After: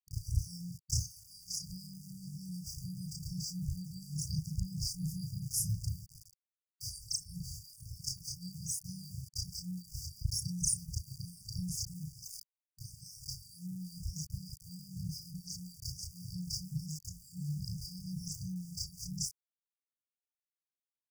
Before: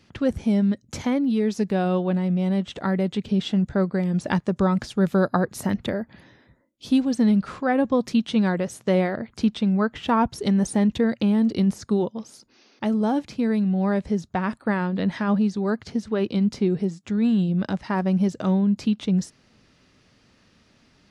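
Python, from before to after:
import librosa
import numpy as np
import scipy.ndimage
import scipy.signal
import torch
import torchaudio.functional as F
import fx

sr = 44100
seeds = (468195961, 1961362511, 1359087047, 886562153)

y = fx.frame_reverse(x, sr, frame_ms=75.0)
y = np.where(np.abs(y) >= 10.0 ** (-47.5 / 20.0), y, 0.0)
y = fx.brickwall_bandstop(y, sr, low_hz=150.0, high_hz=4600.0)
y = y * librosa.db_to_amplitude(8.0)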